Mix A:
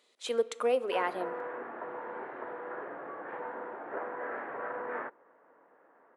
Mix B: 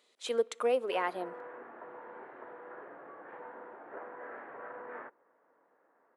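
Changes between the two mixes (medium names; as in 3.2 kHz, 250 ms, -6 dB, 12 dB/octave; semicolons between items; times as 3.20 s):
speech: send -8.5 dB; background -7.5 dB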